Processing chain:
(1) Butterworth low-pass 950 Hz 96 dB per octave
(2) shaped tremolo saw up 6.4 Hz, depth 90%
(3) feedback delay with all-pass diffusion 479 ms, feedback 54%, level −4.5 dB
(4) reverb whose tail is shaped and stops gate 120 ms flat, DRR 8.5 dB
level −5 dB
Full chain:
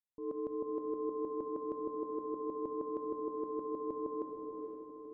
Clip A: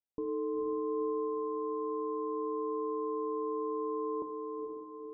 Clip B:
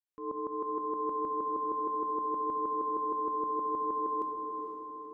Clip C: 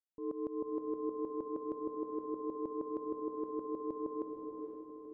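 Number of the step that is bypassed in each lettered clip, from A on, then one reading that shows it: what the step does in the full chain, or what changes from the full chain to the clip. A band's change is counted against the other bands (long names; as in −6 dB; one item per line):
2, change in crest factor −3.0 dB
1, change in integrated loudness +6.0 LU
4, echo-to-direct ratio −1.5 dB to −3.0 dB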